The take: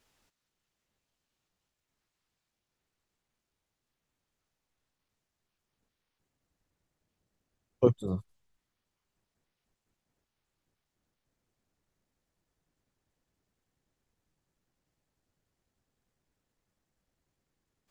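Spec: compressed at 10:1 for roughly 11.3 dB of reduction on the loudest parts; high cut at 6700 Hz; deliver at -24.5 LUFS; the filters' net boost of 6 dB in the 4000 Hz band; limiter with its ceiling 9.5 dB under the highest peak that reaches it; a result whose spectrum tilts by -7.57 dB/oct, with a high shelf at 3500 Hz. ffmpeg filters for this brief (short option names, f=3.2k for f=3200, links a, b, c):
-af "lowpass=6.7k,highshelf=f=3.5k:g=6,equalizer=f=4k:t=o:g=4.5,acompressor=threshold=-28dB:ratio=10,volume=17.5dB,alimiter=limit=-10dB:level=0:latency=1"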